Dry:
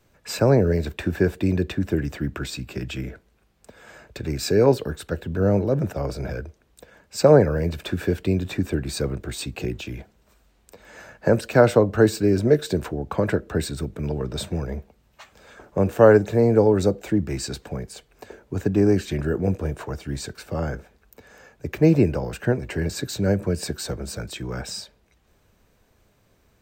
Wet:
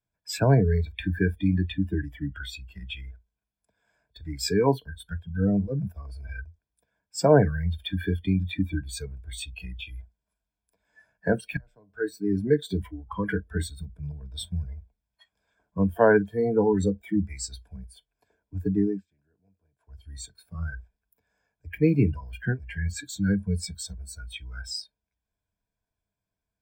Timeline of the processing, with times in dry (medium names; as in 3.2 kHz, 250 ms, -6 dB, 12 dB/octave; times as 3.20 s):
11.57–12.54 s: fade in
18.72–20.14 s: dip -19.5 dB, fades 0.36 s
whole clip: comb 1.2 ms, depth 40%; spectral noise reduction 24 dB; rippled EQ curve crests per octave 1.7, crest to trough 8 dB; trim -3.5 dB